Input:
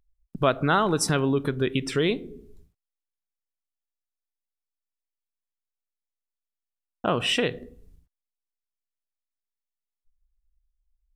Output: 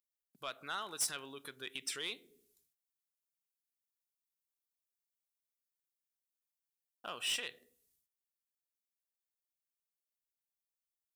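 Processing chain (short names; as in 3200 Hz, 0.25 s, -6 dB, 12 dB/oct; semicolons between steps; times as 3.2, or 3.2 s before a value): vocal rider 2 s; differentiator; soft clip -29 dBFS, distortion -9 dB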